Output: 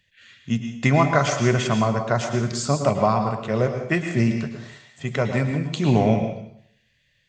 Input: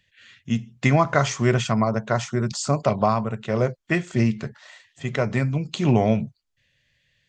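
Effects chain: plate-style reverb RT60 0.68 s, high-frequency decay 1×, pre-delay 95 ms, DRR 5.5 dB

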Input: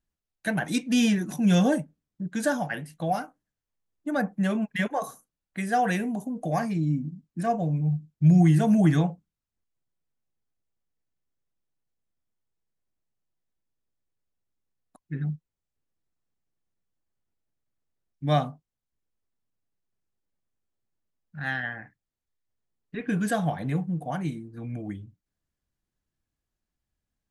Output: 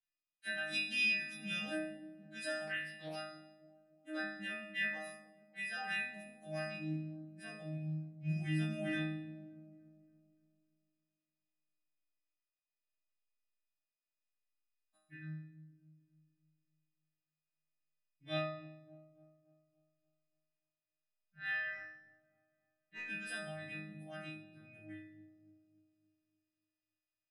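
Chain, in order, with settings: frequency quantiser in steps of 2 st; band shelf 2800 Hz +12 dB; 21.72–23.04 overdrive pedal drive 15 dB, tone 1100 Hz, clips at -13 dBFS; resonator bank G#2 fifth, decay 0.76 s; dark delay 0.286 s, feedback 46%, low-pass 480 Hz, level -10 dB; 2.67–3.16 Doppler distortion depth 0.14 ms; gain -5 dB

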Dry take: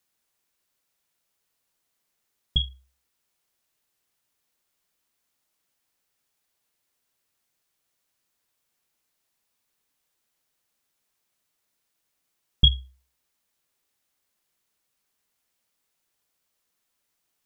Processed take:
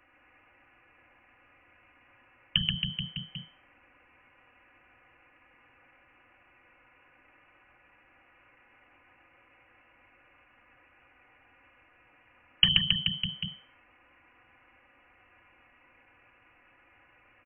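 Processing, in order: low shelf 110 Hz -6.5 dB; comb 4.3 ms, depth 80%; reverse bouncing-ball echo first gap 0.13 s, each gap 1.1×, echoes 5; overdrive pedal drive 31 dB, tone 1400 Hz, clips at -2.5 dBFS; inverted band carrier 3100 Hz

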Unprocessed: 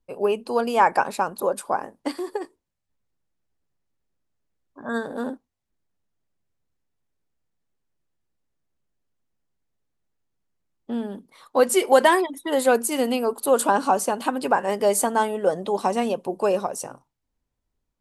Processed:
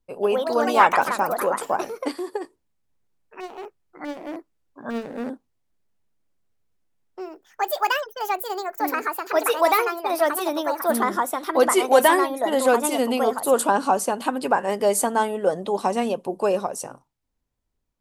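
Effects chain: 4.9–5.3 median filter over 41 samples; echoes that change speed 0.158 s, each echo +4 st, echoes 2

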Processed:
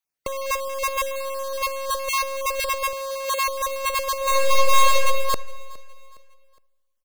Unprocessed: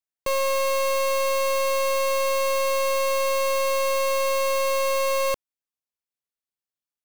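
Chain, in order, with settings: random spectral dropouts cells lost 23%; negative-ratio compressor -27 dBFS, ratio -0.5; 2.93–3.47 HPF 290 Hz; 4.17–4.99 reverb throw, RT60 1.5 s, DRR -5 dB; feedback echo 0.413 s, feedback 40%, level -22.5 dB; gain +2.5 dB

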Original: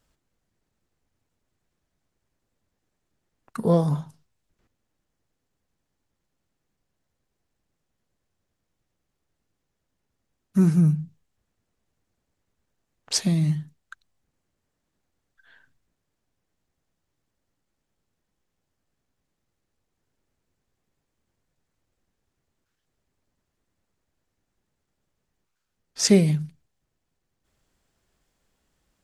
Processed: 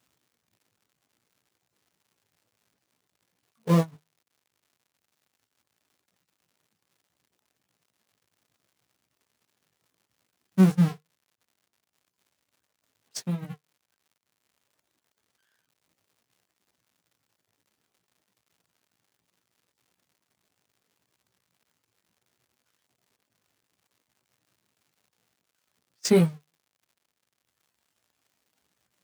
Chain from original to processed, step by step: zero-crossing step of -19 dBFS; gate -16 dBFS, range -45 dB; reverb removal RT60 1.9 s; chorus 0.66 Hz, delay 16 ms, depth 2.5 ms; crackle 140/s -55 dBFS; HPF 85 Hz 24 dB/oct

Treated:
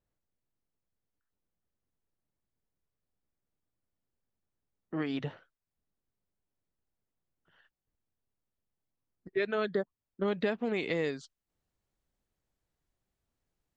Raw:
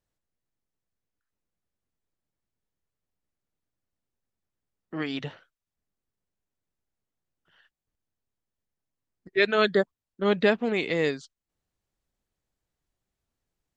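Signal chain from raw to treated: high shelf 2100 Hz -10 dB, from 10.28 s -3.5 dB; compressor 4:1, threshold -28 dBFS, peak gain reduction 10 dB

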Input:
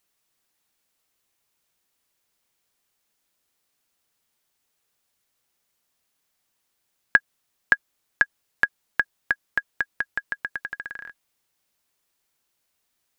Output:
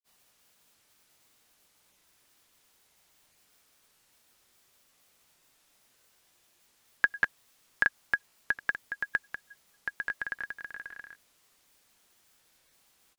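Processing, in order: added noise white -59 dBFS; grains 0.101 s, grains 30/s, spray 0.155 s, pitch spread up and down by 0 st; gain -3.5 dB

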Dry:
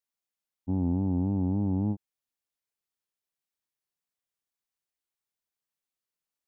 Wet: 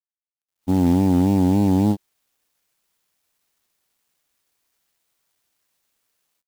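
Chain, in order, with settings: low shelf 220 Hz -11.5 dB; AGC gain up to 16.5 dB; companded quantiser 6-bit

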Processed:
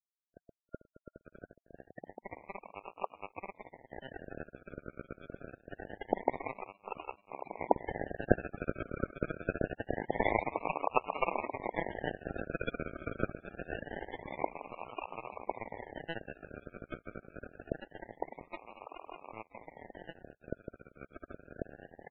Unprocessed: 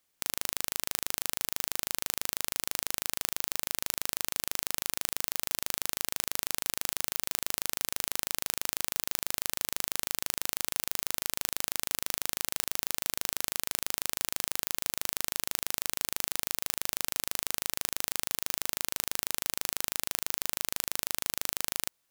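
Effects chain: block floating point 3-bit; Doppler pass-by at 9.21, 6 m/s, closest 3.6 m; in parallel at +3 dB: compressor 5:1, threshold -45 dBFS, peak gain reduction 17.5 dB; on the sum: crossover distortion -44.5 dBFS; swelling echo 0.123 s, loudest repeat 8, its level -13.5 dB; decimation with a swept rate 36×, swing 60% 0.25 Hz; tilt shelf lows -8 dB, about 840 Hz; reverse; upward compressor, threshold -50 dBFS; reverse; loudest bins only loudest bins 32; downsampling 8000 Hz; gain +8.5 dB

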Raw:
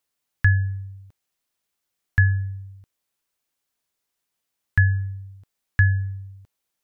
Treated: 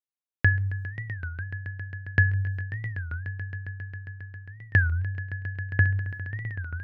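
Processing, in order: gate -35 dBFS, range -23 dB; HPF 160 Hz 6 dB/oct; high shelf 2100 Hz -6.5 dB; notch 860 Hz, Q 12; in parallel at -1.5 dB: compressor, threshold -30 dBFS, peak gain reduction 12 dB; 4.93–6.02 on the sum: air absorption 320 m; swelling echo 0.135 s, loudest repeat 5, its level -16 dB; on a send at -14 dB: reverb RT60 0.55 s, pre-delay 3 ms; on the sum: record warp 33 1/3 rpm, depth 250 cents

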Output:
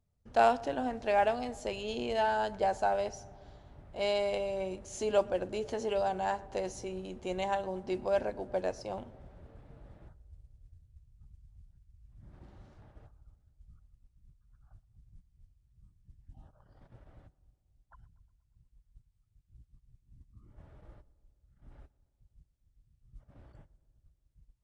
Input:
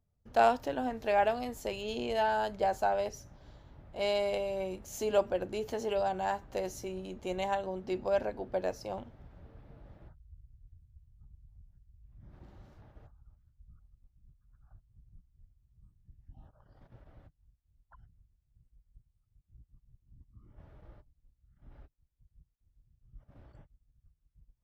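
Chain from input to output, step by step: modulation noise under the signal 35 dB; on a send: darkening echo 0.12 s, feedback 74%, low-pass 1700 Hz, level -21 dB; on the sum: downsampling 22050 Hz

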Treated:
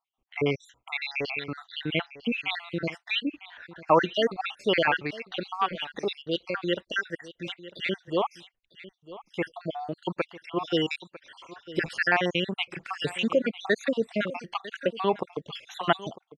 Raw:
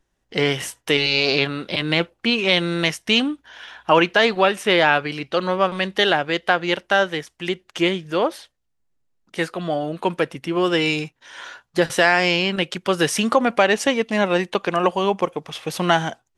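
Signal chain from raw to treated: random spectral dropouts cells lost 66%; LPF 2900 Hz 12 dB/oct, from 3.76 s 5200 Hz; echo 0.95 s -17 dB; gain -4 dB

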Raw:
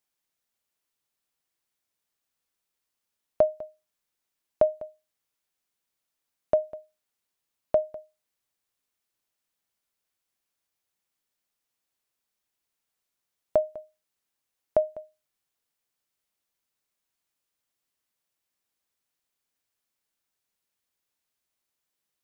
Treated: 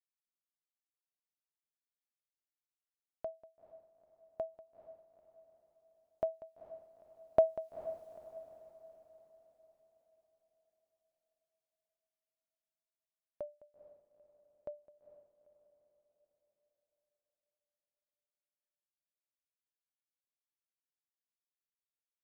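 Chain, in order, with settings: Doppler pass-by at 8, 16 m/s, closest 4.1 m; diffused feedback echo 0.455 s, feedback 48%, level -13.5 dB; gain +5.5 dB

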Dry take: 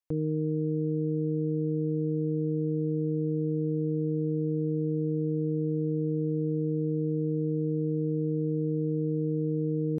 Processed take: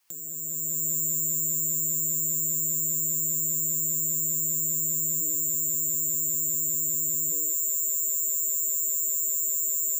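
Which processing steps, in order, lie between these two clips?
opening faded in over 1.67 s; limiter -28 dBFS, peak gain reduction 5.5 dB; careless resampling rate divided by 6×, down filtered, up zero stuff; HPF 65 Hz 24 dB/oct, from 5.21 s 160 Hz, from 7.32 s 430 Hz; non-linear reverb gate 0.24 s rising, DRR 6 dB; upward compressor, threshold -29 dBFS; graphic EQ 125/250/500 Hz -9/-7/-8 dB

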